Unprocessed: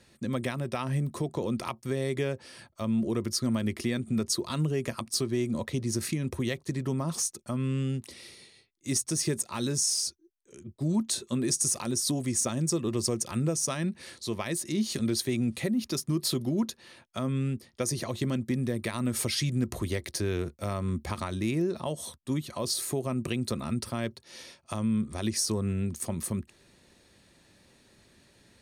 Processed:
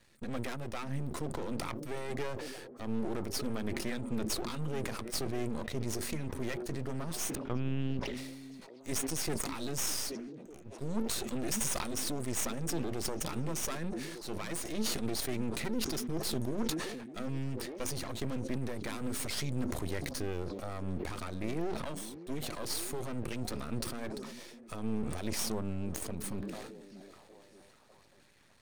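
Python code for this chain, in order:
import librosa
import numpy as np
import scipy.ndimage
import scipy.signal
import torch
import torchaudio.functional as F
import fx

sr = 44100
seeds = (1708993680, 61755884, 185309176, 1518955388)

y = fx.peak_eq(x, sr, hz=1900.0, db=3.0, octaves=1.0)
y = fx.lpc_vocoder(y, sr, seeds[0], excitation='pitch_kept', order=8, at=(7.35, 8.17))
y = np.maximum(y, 0.0)
y = fx.echo_stepped(y, sr, ms=602, hz=250.0, octaves=0.7, feedback_pct=70, wet_db=-10.5)
y = fx.sustainer(y, sr, db_per_s=35.0)
y = y * librosa.db_to_amplitude(-3.0)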